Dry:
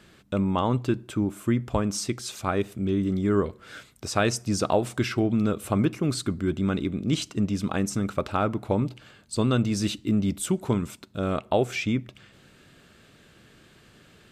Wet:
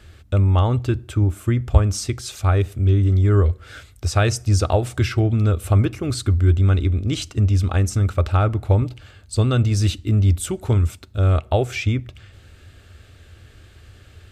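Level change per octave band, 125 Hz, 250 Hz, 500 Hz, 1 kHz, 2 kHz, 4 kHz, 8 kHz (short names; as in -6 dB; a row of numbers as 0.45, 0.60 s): +13.0, -1.0, +2.0, +2.0, +3.0, +3.0, +3.0 dB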